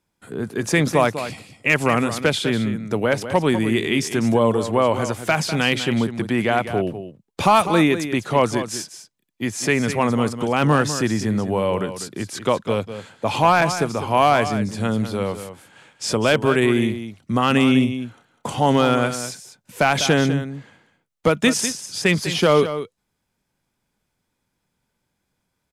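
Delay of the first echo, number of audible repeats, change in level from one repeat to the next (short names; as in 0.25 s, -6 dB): 0.199 s, 1, no steady repeat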